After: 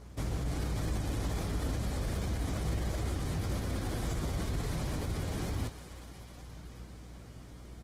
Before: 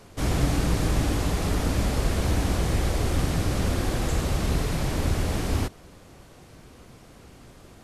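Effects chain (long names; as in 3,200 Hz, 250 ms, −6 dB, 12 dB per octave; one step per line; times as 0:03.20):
high-pass filter 52 Hz 12 dB per octave
low-shelf EQ 130 Hz +6.5 dB
notch filter 2,700 Hz, Q 14
brickwall limiter −21 dBFS, peak gain reduction 12 dB
mains hum 60 Hz, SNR 15 dB
double-tracking delay 19 ms −11 dB
on a send: feedback echo with a high-pass in the loop 373 ms, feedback 72%, high-pass 520 Hz, level −12 dB
on the sum: level −6 dB
Opus 16 kbit/s 48,000 Hz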